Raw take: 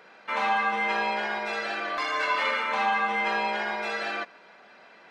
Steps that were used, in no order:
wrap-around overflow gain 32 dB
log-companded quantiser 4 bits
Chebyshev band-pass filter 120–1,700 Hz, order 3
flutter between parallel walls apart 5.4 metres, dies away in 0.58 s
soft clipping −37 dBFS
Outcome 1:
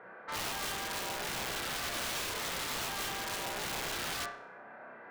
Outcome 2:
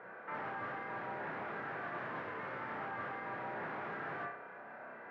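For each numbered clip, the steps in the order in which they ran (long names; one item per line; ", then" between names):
log-companded quantiser, then Chebyshev band-pass filter, then soft clipping, then flutter between parallel walls, then wrap-around overflow
soft clipping, then log-companded quantiser, then flutter between parallel walls, then wrap-around overflow, then Chebyshev band-pass filter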